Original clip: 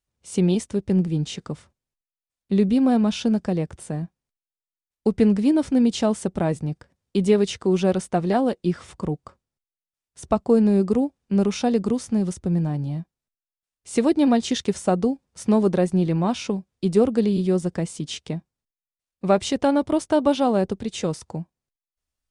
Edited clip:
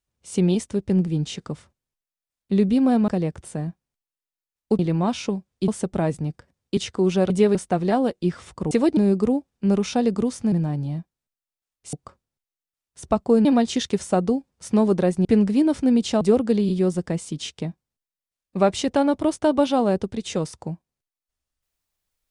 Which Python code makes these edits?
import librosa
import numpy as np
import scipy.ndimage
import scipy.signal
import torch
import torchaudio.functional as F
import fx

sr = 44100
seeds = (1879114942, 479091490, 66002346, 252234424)

y = fx.edit(x, sr, fx.cut(start_s=3.08, length_s=0.35),
    fx.swap(start_s=5.14, length_s=0.96, other_s=16.0, other_length_s=0.89),
    fx.move(start_s=7.19, length_s=0.25, to_s=7.97),
    fx.swap(start_s=9.13, length_s=1.52, other_s=13.94, other_length_s=0.26),
    fx.cut(start_s=12.2, length_s=0.33), tone=tone)